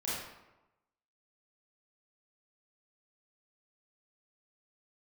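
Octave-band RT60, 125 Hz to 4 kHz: 1.0, 1.0, 1.0, 1.0, 0.85, 0.60 seconds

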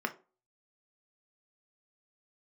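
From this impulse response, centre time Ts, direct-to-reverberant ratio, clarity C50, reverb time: 6 ms, 5.0 dB, 16.5 dB, 0.35 s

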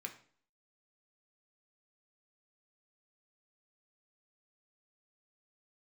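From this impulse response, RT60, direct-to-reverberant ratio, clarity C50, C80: 0.50 s, 3.5 dB, 11.5 dB, 15.5 dB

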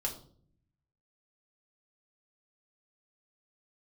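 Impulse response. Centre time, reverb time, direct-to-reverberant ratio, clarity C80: 15 ms, 0.55 s, −1.5 dB, 15.0 dB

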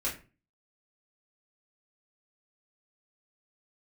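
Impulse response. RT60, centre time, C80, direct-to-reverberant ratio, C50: 0.35 s, 24 ms, 15.0 dB, −6.5 dB, 10.0 dB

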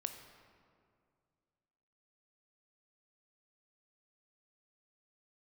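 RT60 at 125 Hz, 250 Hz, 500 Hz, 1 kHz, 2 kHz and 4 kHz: 2.7, 2.5, 2.3, 2.1, 1.7, 1.2 seconds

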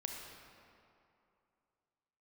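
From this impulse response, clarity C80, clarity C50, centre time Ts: 3.0 dB, 2.0 dB, 88 ms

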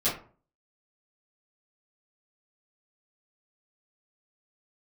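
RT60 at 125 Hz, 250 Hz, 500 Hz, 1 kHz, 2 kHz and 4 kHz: 0.50, 0.45, 0.45, 0.40, 0.30, 0.20 seconds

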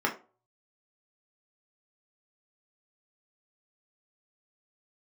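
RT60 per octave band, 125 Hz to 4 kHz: 0.65, 0.35, 0.40, 0.35, 0.25, 0.20 seconds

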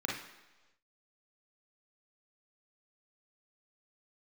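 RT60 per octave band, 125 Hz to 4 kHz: 0.90, 0.95, 1.2, 1.1, 1.1, 1.1 seconds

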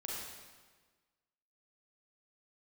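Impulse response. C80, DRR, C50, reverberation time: 0.5 dB, −5.0 dB, −2.0 dB, 1.4 s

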